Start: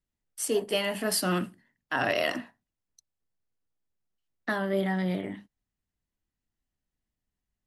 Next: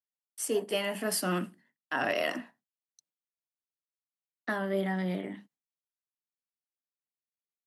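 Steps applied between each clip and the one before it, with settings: gate with hold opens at -56 dBFS; HPF 150 Hz 24 dB/oct; dynamic EQ 4000 Hz, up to -6 dB, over -50 dBFS, Q 3; gain -2.5 dB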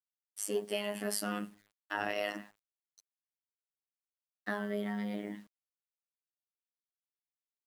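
in parallel at +1 dB: compressor, threshold -37 dBFS, peak gain reduction 12 dB; on the sum: robotiser 103 Hz; requantised 10-bit, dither none; gain -5.5 dB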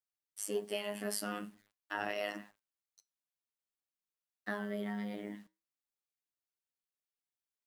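flange 0.46 Hz, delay 4.8 ms, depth 3.3 ms, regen -83%; gain +2 dB

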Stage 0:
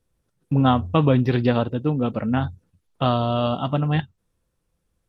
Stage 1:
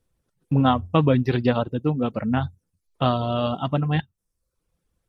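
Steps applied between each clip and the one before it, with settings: reverb removal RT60 0.58 s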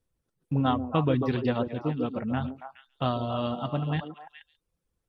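delay with a stepping band-pass 0.139 s, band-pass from 350 Hz, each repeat 1.4 oct, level -3 dB; gain -6.5 dB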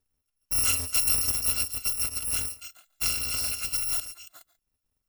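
FFT order left unsorted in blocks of 256 samples

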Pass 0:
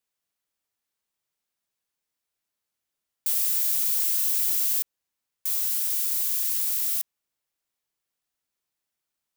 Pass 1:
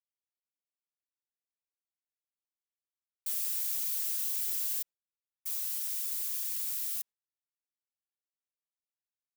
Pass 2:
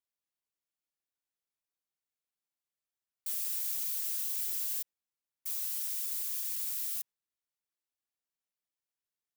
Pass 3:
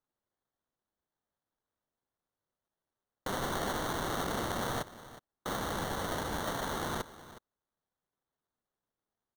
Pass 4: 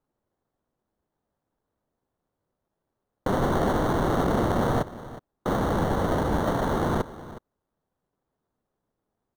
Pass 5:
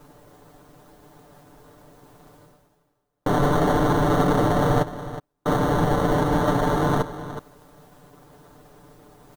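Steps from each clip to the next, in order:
gate with hold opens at -16 dBFS; flange 1.1 Hz, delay 3.7 ms, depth 2.9 ms, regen -1%; gain -5 dB
notches 60/120 Hz; in parallel at +3 dB: limiter -26 dBFS, peak gain reduction 6 dB; on the sum: gain -7.5 dB
sample-rate reducer 2500 Hz, jitter 0%; echo 0.365 s -16 dB
tilt shelf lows +8.5 dB, about 1400 Hz; gain +5.5 dB
reverse; upward compressor, threshold -31 dBFS; reverse; comb 6.8 ms, depth 90%; gain +1.5 dB

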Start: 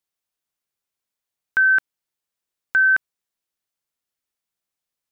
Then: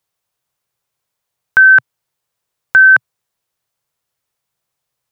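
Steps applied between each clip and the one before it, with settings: graphic EQ 125/250/500/1000 Hz +11/-5/+4/+4 dB; gain +8 dB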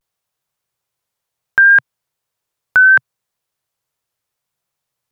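vibrato 0.69 Hz 79 cents; gain -2 dB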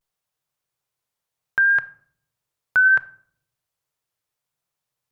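limiter -7 dBFS, peak gain reduction 3.5 dB; shoebox room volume 900 m³, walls furnished, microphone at 0.46 m; gain -5 dB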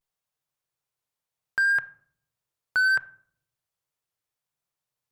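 hard clip -14.5 dBFS, distortion -16 dB; gain -4.5 dB

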